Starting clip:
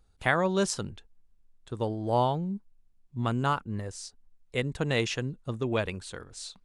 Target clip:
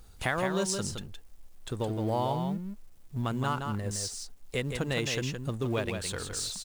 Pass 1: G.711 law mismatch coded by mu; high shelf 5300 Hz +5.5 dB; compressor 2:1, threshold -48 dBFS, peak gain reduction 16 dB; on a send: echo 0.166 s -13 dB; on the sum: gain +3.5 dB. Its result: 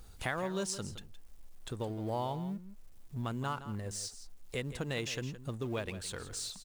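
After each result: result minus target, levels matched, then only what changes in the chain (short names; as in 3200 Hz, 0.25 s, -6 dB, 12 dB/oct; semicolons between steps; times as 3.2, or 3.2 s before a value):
compressor: peak gain reduction +5.5 dB; echo-to-direct -7 dB
change: compressor 2:1, threshold -37 dBFS, peak gain reduction 10.5 dB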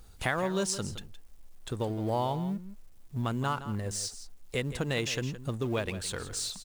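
echo-to-direct -7 dB
change: echo 0.166 s -6 dB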